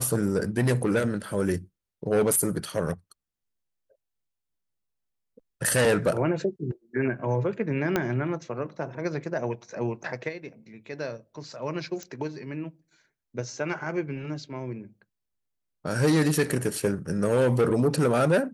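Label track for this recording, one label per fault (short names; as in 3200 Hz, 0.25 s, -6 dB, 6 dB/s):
7.960000	7.960000	pop -10 dBFS
12.030000	12.030000	pop -23 dBFS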